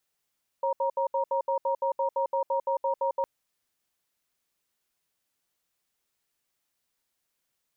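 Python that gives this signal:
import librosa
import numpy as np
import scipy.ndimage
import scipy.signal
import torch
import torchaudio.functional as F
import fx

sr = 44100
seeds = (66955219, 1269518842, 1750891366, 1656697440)

y = fx.cadence(sr, length_s=2.61, low_hz=544.0, high_hz=941.0, on_s=0.1, off_s=0.07, level_db=-26.5)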